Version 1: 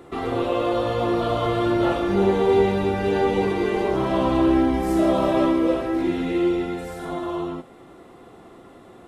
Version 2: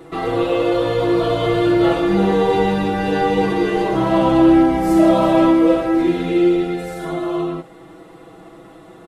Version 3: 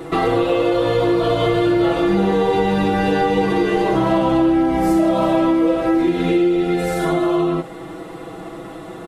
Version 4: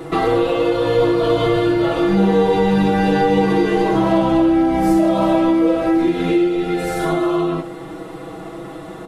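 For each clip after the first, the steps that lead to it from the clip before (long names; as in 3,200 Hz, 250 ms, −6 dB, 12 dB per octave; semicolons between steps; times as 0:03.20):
comb filter 6.2 ms, depth 95%; level +2 dB
downward compressor 5 to 1, threshold −23 dBFS, peak gain reduction 13.5 dB; level +8.5 dB
rectangular room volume 280 cubic metres, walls furnished, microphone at 0.55 metres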